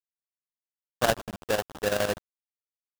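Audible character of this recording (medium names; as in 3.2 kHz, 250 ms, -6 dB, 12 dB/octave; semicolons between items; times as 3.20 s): aliases and images of a low sample rate 2.2 kHz, jitter 20%; chopped level 12 Hz, depth 65%, duty 65%; a quantiser's noise floor 6-bit, dither none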